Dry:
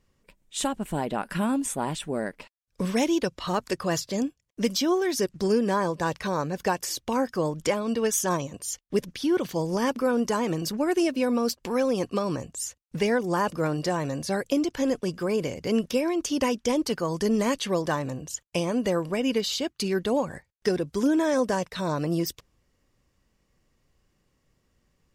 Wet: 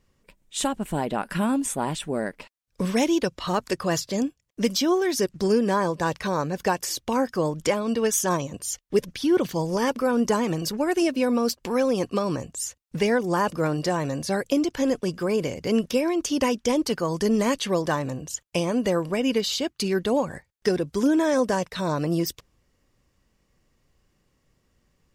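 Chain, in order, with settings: 8.49–11.02 phaser 1.1 Hz, delay 2.4 ms, feedback 27%; gain +2 dB

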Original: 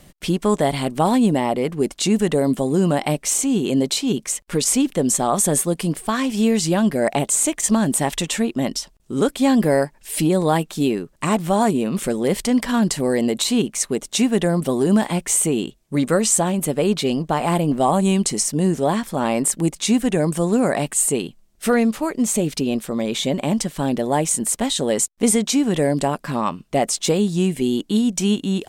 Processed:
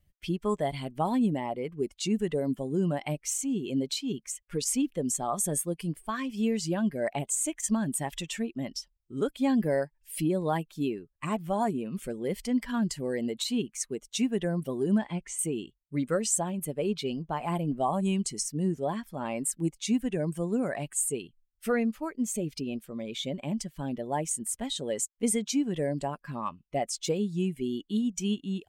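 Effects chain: per-bin expansion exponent 1.5; 14.98–15.39 air absorption 92 m; gain -7.5 dB

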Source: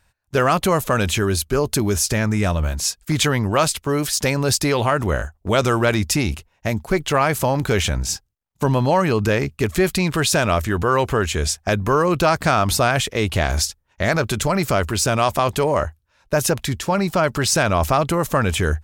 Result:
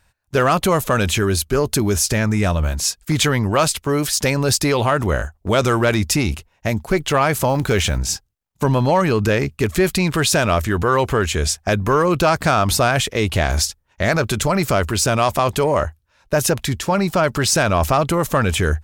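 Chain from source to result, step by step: 7.49–8 block floating point 7-bit; soft clip -6.5 dBFS, distortion -24 dB; gain +2 dB

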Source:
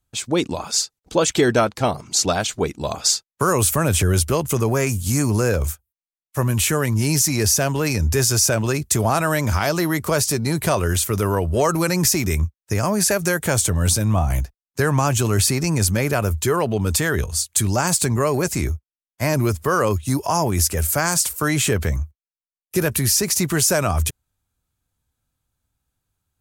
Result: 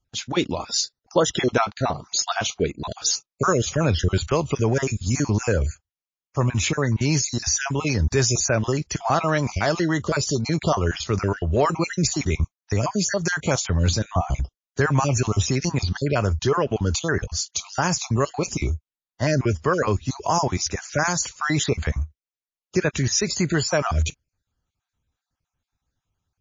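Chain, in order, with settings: random spectral dropouts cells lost 35%; MP3 32 kbps 16000 Hz

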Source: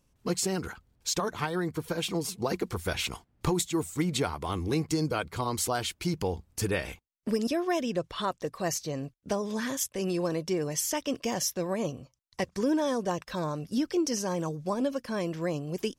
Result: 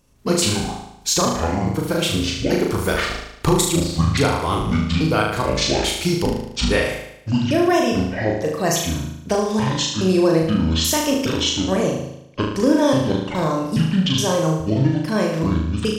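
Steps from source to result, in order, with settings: trilling pitch shifter -10.5 st, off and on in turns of 0.417 s; flutter echo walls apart 6.4 m, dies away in 0.78 s; gain +9 dB

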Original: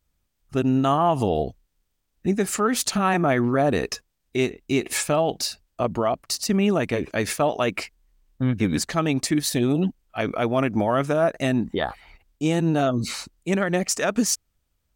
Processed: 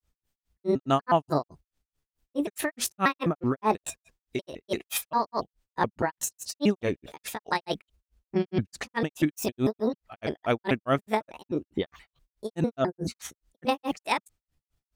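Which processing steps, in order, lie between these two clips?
trilling pitch shifter +6.5 st, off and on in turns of 0.133 s; grains 0.162 s, grains 4.7/s, pitch spread up and down by 0 st

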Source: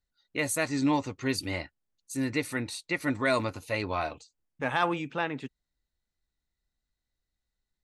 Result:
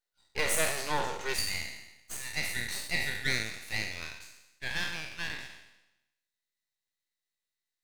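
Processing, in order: spectral trails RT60 0.95 s; steep high-pass 370 Hz 72 dB/oct, from 1.33 s 1600 Hz; half-wave rectifier; gain +2.5 dB

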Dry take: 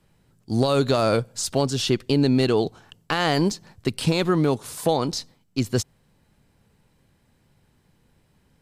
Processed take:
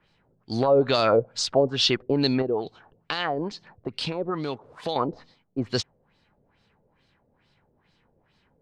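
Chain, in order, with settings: low shelf 310 Hz -8 dB; 2.42–4.96 compressor 1.5:1, threshold -38 dBFS, peak gain reduction 7.5 dB; LFO low-pass sine 2.3 Hz 490–4700 Hz

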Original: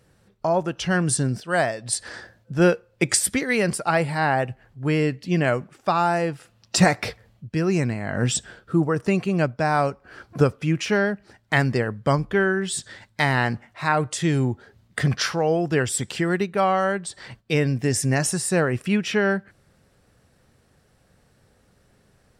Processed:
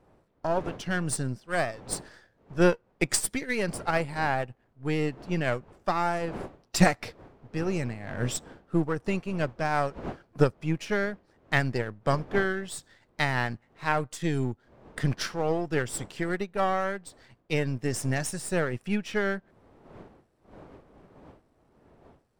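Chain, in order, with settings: half-wave gain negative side -7 dB; wind noise 550 Hz -41 dBFS; upward expander 1.5:1, over -42 dBFS

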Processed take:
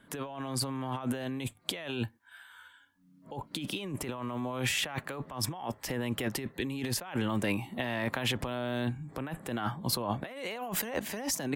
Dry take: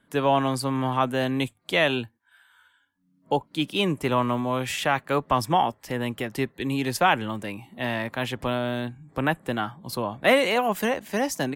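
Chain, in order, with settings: negative-ratio compressor -33 dBFS, ratio -1; gain -2 dB

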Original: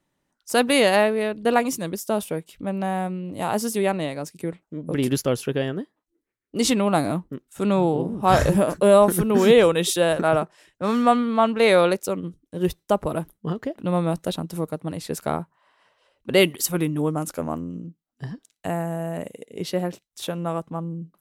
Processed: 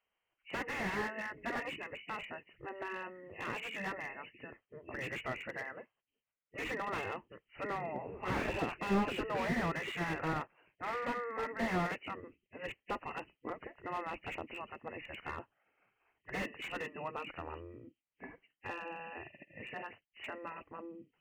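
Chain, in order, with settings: nonlinear frequency compression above 1700 Hz 4:1; spectral gate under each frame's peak -10 dB weak; slew limiter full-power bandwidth 50 Hz; gain -6.5 dB

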